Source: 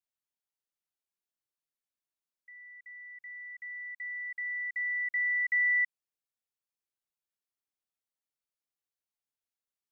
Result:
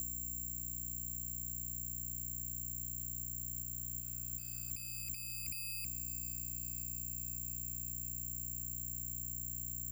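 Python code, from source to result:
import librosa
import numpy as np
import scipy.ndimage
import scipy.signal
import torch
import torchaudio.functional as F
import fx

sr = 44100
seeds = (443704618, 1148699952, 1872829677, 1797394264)

p1 = fx.band_swap(x, sr, width_hz=4000)
p2 = p1 + 0.65 * np.pad(p1, (int(1.8 * sr / 1000.0), 0))[:len(p1)]
p3 = fx.over_compress(p2, sr, threshold_db=-36.0, ratio=-1.0)
p4 = p2 + F.gain(torch.from_numpy(p3), -1.0).numpy()
p5 = fx.add_hum(p4, sr, base_hz=60, snr_db=31)
p6 = 10.0 ** (-31.5 / 20.0) * np.tanh(p5 / 10.0 ** (-31.5 / 20.0))
p7 = fx.dmg_noise_colour(p6, sr, seeds[0], colour='violet', level_db=-75.0)
p8 = p7 + fx.echo_diffused(p7, sr, ms=504, feedback_pct=66, wet_db=-15.0, dry=0)
p9 = (np.kron(scipy.signal.resample_poly(p8, 1, 6), np.eye(6)[0]) * 6)[:len(p8)]
p10 = fx.band_squash(p9, sr, depth_pct=100)
y = F.gain(torch.from_numpy(p10), 17.5).numpy()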